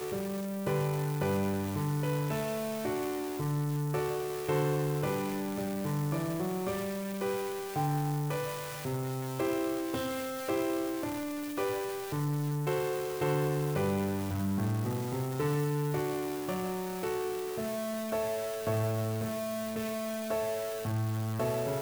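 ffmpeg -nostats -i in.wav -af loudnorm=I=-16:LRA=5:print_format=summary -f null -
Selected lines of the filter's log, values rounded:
Input Integrated:    -33.0 LUFS
Input True Peak:     -18.8 dBTP
Input LRA:             1.8 LU
Input Threshold:     -43.0 LUFS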